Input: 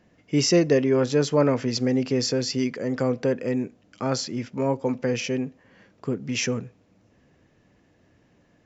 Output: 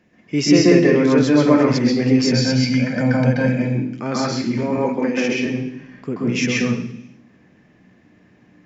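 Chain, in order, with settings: 2.18–3.62 s: comb 1.3 ms, depth 84%; 4.63–5.32 s: high-pass 200 Hz 24 dB/octave; reverberation RT60 0.70 s, pre-delay 127 ms, DRR -4 dB

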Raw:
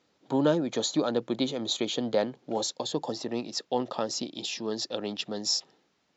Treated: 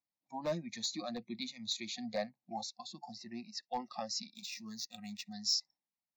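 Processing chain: spectral noise reduction 24 dB; 2.54–3.63 s: treble shelf 2.5 kHz -7.5 dB; hard clipper -19.5 dBFS, distortion -20 dB; static phaser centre 2.1 kHz, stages 8; 4.35–5.33 s: decimation joined by straight lines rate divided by 4×; trim -3.5 dB

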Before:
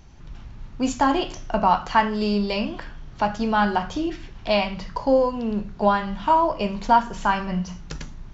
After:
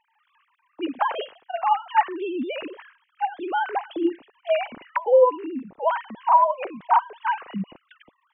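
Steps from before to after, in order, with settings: formants replaced by sine waves; trim -1.5 dB

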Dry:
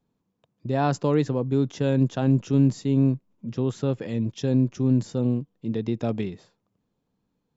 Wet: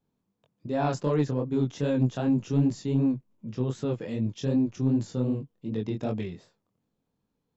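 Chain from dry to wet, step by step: chorus 2.6 Hz, delay 18.5 ms, depth 5.8 ms; saturation -13 dBFS, distortion -23 dB

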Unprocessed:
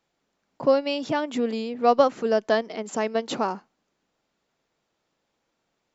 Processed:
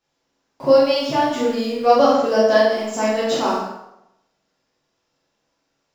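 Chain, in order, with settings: peaking EQ 5.3 kHz +7.5 dB 0.32 oct; in parallel at -9 dB: small samples zeroed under -33 dBFS; on the sum: flutter echo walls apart 8 m, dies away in 0.42 s; plate-style reverb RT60 0.82 s, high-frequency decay 0.8×, DRR -7.5 dB; trim -5.5 dB

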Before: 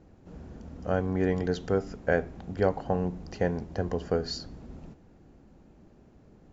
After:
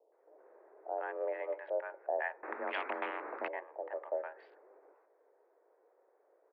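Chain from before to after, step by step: local Wiener filter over 15 samples; bands offset in time lows, highs 120 ms, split 680 Hz; mistuned SSB +140 Hz 330–2400 Hz; 2.43–3.48 s: spectrum-flattening compressor 4:1; trim -5.5 dB

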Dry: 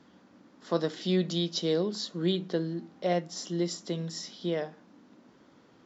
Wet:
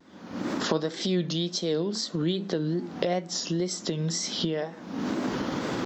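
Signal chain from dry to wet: recorder AGC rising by 62 dB/s; wow and flutter 110 cents

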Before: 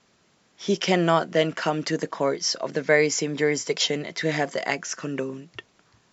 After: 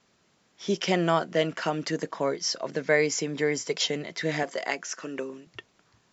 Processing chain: 4.43–5.47 s: high-pass 270 Hz 12 dB/octave; trim -3.5 dB

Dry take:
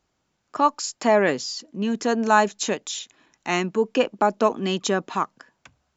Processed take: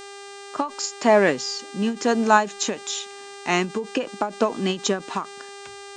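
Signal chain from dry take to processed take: mains buzz 400 Hz, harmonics 23, -42 dBFS -4 dB/octave; endings held to a fixed fall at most 180 dB/s; trim +2 dB

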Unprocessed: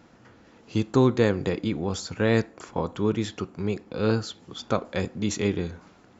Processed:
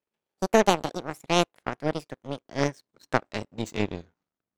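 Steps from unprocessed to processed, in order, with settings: gliding tape speed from 183% -> 88%; power-law waveshaper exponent 2; trim +6.5 dB

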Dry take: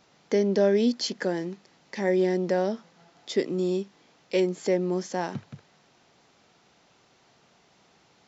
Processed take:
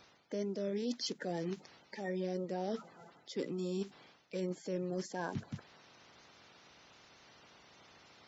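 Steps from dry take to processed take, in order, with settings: coarse spectral quantiser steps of 30 dB; reverse; compression 6:1, threshold -37 dBFS, peak gain reduction 18.5 dB; reverse; trim +1.5 dB

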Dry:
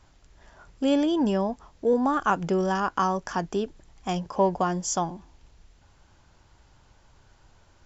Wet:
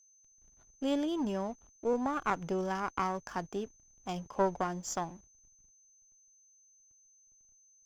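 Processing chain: hysteresis with a dead band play -41 dBFS; whistle 6.2 kHz -52 dBFS; Chebyshev shaper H 2 -10 dB, 7 -34 dB, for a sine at -10 dBFS; trim -8.5 dB

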